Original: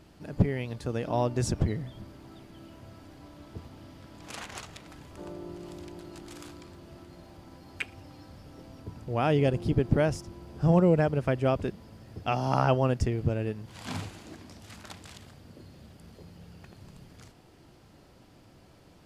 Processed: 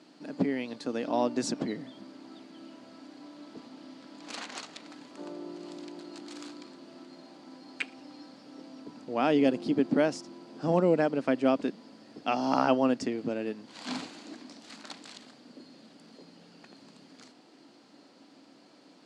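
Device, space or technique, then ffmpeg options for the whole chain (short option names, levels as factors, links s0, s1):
television speaker: -af "highpass=f=220:w=0.5412,highpass=f=220:w=1.3066,equalizer=f=270:t=q:w=4:g=8,equalizer=f=380:t=q:w=4:g=-3,equalizer=f=4300:t=q:w=4:g=7,lowpass=f=8600:w=0.5412,lowpass=f=8600:w=1.3066"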